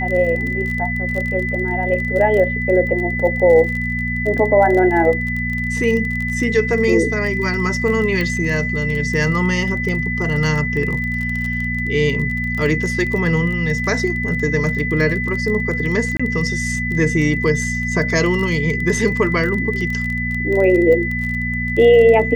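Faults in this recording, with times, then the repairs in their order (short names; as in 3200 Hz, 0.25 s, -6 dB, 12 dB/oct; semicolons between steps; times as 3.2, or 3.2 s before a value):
crackle 26/s -23 dBFS
hum 60 Hz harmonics 4 -24 dBFS
tone 2000 Hz -22 dBFS
8.21 pop -10 dBFS
16.17–16.2 gap 25 ms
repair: de-click; de-hum 60 Hz, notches 4; notch 2000 Hz, Q 30; interpolate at 16.17, 25 ms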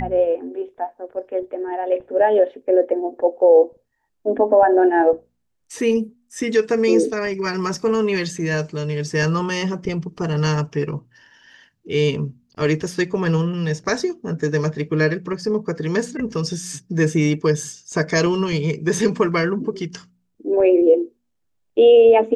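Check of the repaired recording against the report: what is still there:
none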